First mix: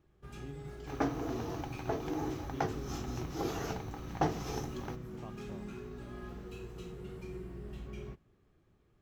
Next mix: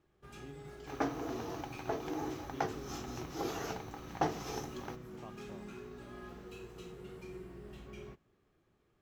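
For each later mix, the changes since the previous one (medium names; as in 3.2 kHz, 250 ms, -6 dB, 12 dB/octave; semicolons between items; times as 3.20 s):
master: add bass shelf 190 Hz -9.5 dB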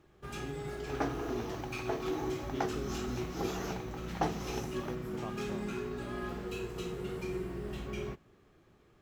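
speech +7.0 dB; first sound +10.0 dB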